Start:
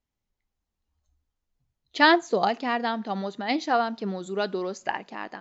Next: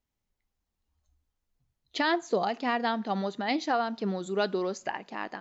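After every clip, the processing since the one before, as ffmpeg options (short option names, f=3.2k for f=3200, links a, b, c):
-af "alimiter=limit=-16.5dB:level=0:latency=1:release=271"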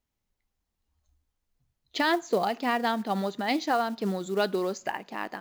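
-af "acrusher=bits=6:mode=log:mix=0:aa=0.000001,volume=1.5dB"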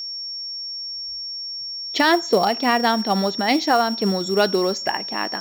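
-af "aeval=exprs='val(0)+0.0158*sin(2*PI*5500*n/s)':c=same,volume=8dB"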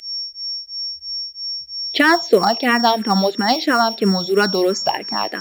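-filter_complex "[0:a]asplit=2[a][b];[b]afreqshift=-3[c];[a][c]amix=inputs=2:normalize=1,volume=6dB"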